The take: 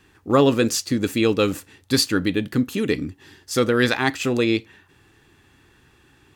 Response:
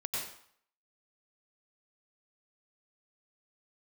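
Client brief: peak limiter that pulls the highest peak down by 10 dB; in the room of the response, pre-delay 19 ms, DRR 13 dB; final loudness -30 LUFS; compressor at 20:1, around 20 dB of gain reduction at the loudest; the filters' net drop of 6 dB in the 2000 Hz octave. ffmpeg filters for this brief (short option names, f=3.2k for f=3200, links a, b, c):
-filter_complex "[0:a]equalizer=f=2k:t=o:g=-8,acompressor=threshold=-32dB:ratio=20,alimiter=level_in=7dB:limit=-24dB:level=0:latency=1,volume=-7dB,asplit=2[a][b];[1:a]atrim=start_sample=2205,adelay=19[c];[b][c]afir=irnorm=-1:irlink=0,volume=-16.5dB[d];[a][d]amix=inputs=2:normalize=0,volume=11dB"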